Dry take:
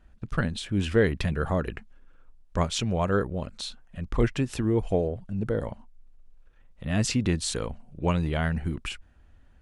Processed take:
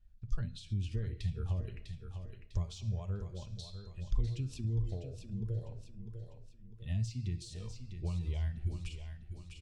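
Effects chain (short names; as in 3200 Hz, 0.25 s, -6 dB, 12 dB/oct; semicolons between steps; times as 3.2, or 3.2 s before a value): de-hum 158.6 Hz, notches 38; on a send at -7 dB: reverb RT60 1.0 s, pre-delay 5 ms; on the sum: spectral noise reduction 12 dB; bell 4900 Hz +12.5 dB 1.8 oct; in parallel at -12 dB: soft clip -18 dBFS, distortion -13 dB; on the sum: compressor, threshold -29 dBFS, peak gain reduction 15 dB; EQ curve 130 Hz 0 dB, 200 Hz -15 dB, 1300 Hz -27 dB; feedback echo 0.65 s, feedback 38%, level -10 dB; mismatched tape noise reduction encoder only; gain +3.5 dB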